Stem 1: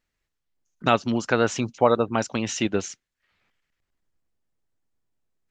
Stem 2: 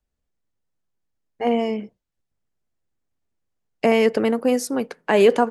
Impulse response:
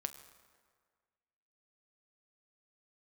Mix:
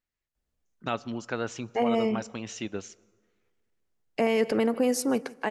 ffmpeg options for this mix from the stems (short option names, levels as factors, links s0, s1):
-filter_complex "[0:a]volume=0.224,asplit=2[s0][s1];[s1]volume=0.422[s2];[1:a]adelay=350,volume=0.75,asplit=3[s3][s4][s5];[s4]volume=0.2[s6];[s5]volume=0.0841[s7];[2:a]atrim=start_sample=2205[s8];[s2][s6]amix=inputs=2:normalize=0[s9];[s9][s8]afir=irnorm=-1:irlink=0[s10];[s7]aecho=0:1:158|316|474|632|790:1|0.33|0.109|0.0359|0.0119[s11];[s0][s3][s10][s11]amix=inputs=4:normalize=0,alimiter=limit=0.178:level=0:latency=1:release=74"